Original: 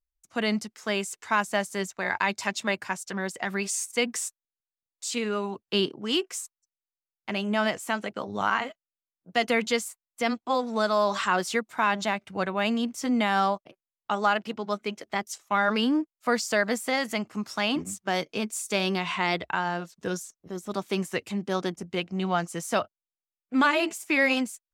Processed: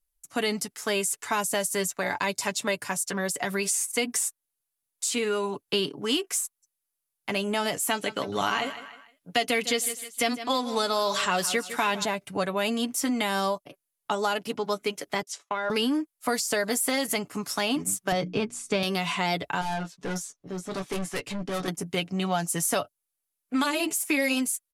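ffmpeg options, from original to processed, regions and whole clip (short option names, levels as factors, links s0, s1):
-filter_complex "[0:a]asettb=1/sr,asplit=3[s0][s1][s2];[s0]atrim=end=7.914[s3];[s1]atrim=start=7.91:end=12.05,asetpts=PTS-STARTPTS,afade=t=in:d=0.004:c=qsin,afade=t=out:st=4.136:d=0.004:c=qsin,equalizer=f=2800:t=o:w=1.8:g=7.5,aecho=1:1:155|310|465:0.158|0.0507|0.0162,atrim=end_sample=182574[s4];[s2]atrim=start=12.046[s5];[s3][s4]acrossfade=d=0.004:c1=hsin:c2=qsin[s6];[s6][s5]acrossfade=d=0.004:c1=qsin:c2=hsin,asettb=1/sr,asplit=3[s7][s8][s9];[s7]atrim=end=15.224[s10];[s8]atrim=start=15.22:end=15.7,asetpts=PTS-STARTPTS,afade=t=in:d=0.004:c=qsin,afade=t=out:st=0.476:d=0.004:c=qsin,agate=range=0.0224:threshold=0.00224:ratio=3:release=100:detection=peak,highpass=280,lowpass=4600,acompressor=threshold=0.0501:ratio=3:attack=3.2:release=140:knee=1:detection=peak[s11];[s9]atrim=start=15.696[s12];[s10][s11]acrossfade=d=0.004:c1=hsin:c2=qsin[s13];[s13][s12]acrossfade=d=0.004:c1=qsin:c2=hsin,asettb=1/sr,asplit=3[s14][s15][s16];[s14]atrim=end=18.124[s17];[s15]atrim=start=18.12:end=18.83,asetpts=PTS-STARTPTS,afade=t=in:d=0.004:c=qsin,afade=t=out:st=0.706:d=0.004:c=qsin,lowpass=8300,aemphasis=mode=reproduction:type=riaa,bandreject=f=60:t=h:w=6,bandreject=f=120:t=h:w=6,bandreject=f=180:t=h:w=6,bandreject=f=240:t=h:w=6,bandreject=f=300:t=h:w=6,bandreject=f=360:t=h:w=6[s18];[s16]atrim=start=18.826[s19];[s17][s18]acrossfade=d=0.004:c1=hsin:c2=qsin[s20];[s20][s19]acrossfade=d=0.004:c1=qsin:c2=hsin,asettb=1/sr,asplit=3[s21][s22][s23];[s21]atrim=end=19.614[s24];[s22]atrim=start=19.61:end=21.68,asetpts=PTS-STARTPTS,afade=t=in:d=0.004:c=qsin,afade=t=out:st=2.066:d=0.004:c=qsin,lowpass=5300,asplit=2[s25][s26];[s26]adelay=16,volume=0.562[s27];[s25][s27]amix=inputs=2:normalize=0,atrim=end_sample=91287,aeval=exprs='(tanh(31.6*val(0)+0.25)-tanh(0.25))/31.6':c=same[s28];[s23]atrim=start=21.676[s29];[s24][s28]acrossfade=d=0.004:c1=hsin:c2=qsin[s30];[s30][s29]acrossfade=d=0.004:c1=qsin:c2=hsin,aecho=1:1:7:0.51,acrossover=split=790|3100[s31][s32][s33];[s31]acompressor=threshold=0.0355:ratio=4[s34];[s32]acompressor=threshold=0.0141:ratio=4[s35];[s33]acompressor=threshold=0.0158:ratio=4[s36];[s34][s35][s36]amix=inputs=3:normalize=0,equalizer=f=11000:t=o:w=0.72:g=14.5,volume=1.5"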